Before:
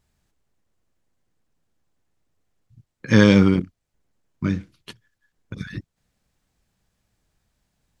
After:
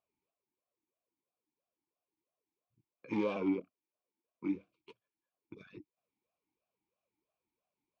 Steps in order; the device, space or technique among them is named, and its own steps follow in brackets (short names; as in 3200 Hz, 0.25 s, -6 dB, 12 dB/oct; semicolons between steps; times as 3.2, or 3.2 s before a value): 3.36–4.55 HPF 170 Hz 12 dB/oct; talk box (tube stage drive 15 dB, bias 0.45; vowel sweep a-u 3 Hz)